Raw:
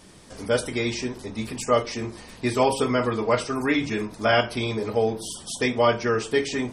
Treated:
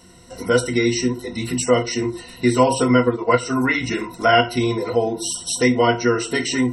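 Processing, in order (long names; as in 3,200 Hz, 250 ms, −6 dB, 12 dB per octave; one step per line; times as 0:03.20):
EQ curve with evenly spaced ripples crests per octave 2, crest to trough 17 dB
0:02.75–0:03.43: transient designer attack +1 dB, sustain −7 dB
in parallel at +3 dB: downward compressor, threshold −27 dBFS, peak gain reduction 15 dB
on the sum: noise reduction from a noise print of the clip's start 8 dB
level −1 dB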